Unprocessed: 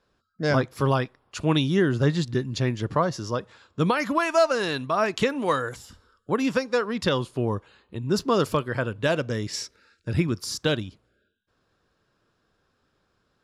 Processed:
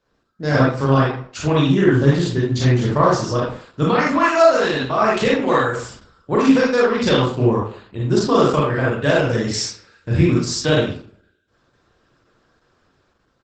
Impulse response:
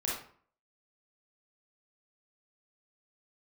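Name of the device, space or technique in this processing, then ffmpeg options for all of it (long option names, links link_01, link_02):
speakerphone in a meeting room: -filter_complex "[0:a]asplit=3[link_01][link_02][link_03];[link_01]afade=type=out:start_time=1.49:duration=0.02[link_04];[link_02]equalizer=frequency=4700:width_type=o:width=0.69:gain=-5,afade=type=in:start_time=1.49:duration=0.02,afade=type=out:start_time=2.01:duration=0.02[link_05];[link_03]afade=type=in:start_time=2.01:duration=0.02[link_06];[link_04][link_05][link_06]amix=inputs=3:normalize=0[link_07];[1:a]atrim=start_sample=2205[link_08];[link_07][link_08]afir=irnorm=-1:irlink=0,asplit=2[link_09][link_10];[link_10]adelay=150,highpass=300,lowpass=3400,asoftclip=type=hard:threshold=-12.5dB,volume=-29dB[link_11];[link_09][link_11]amix=inputs=2:normalize=0,dynaudnorm=framelen=110:gausssize=11:maxgain=6dB" -ar 48000 -c:a libopus -b:a 12k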